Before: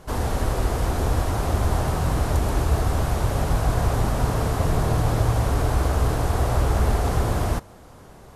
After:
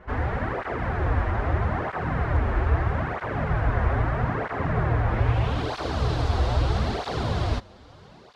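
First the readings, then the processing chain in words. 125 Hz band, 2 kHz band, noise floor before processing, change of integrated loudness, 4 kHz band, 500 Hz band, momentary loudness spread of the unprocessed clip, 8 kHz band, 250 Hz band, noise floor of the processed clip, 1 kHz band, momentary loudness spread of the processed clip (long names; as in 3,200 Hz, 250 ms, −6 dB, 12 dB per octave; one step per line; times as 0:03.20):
−2.5 dB, +2.5 dB, −46 dBFS, −2.5 dB, −2.0 dB, −2.5 dB, 3 LU, below −15 dB, −3.0 dB, −49 dBFS, −1.5 dB, 5 LU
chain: low-pass filter sweep 1,900 Hz → 4,100 Hz, 0:05.08–0:05.73
through-zero flanger with one copy inverted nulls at 0.78 Hz, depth 7.4 ms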